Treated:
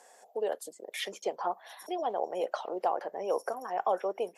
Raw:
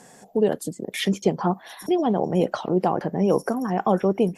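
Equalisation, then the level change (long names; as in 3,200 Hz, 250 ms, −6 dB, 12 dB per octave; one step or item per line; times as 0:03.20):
four-pole ladder high-pass 450 Hz, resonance 30%
−1.5 dB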